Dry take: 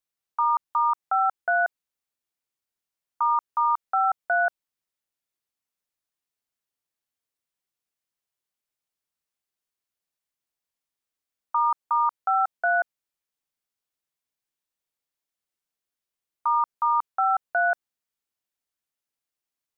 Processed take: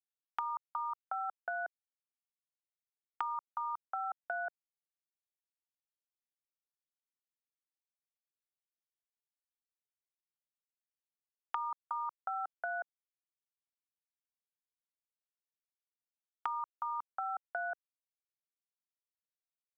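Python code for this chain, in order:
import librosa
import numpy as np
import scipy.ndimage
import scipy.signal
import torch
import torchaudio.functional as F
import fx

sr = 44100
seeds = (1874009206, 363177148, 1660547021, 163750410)

y = scipy.signal.sosfilt(scipy.signal.butter(4, 360.0, 'highpass', fs=sr, output='sos'), x)
y = fx.level_steps(y, sr, step_db=15)
y = fx.quant_dither(y, sr, seeds[0], bits=12, dither='none')
y = fx.band_squash(y, sr, depth_pct=100)
y = F.gain(torch.from_numpy(y), -7.0).numpy()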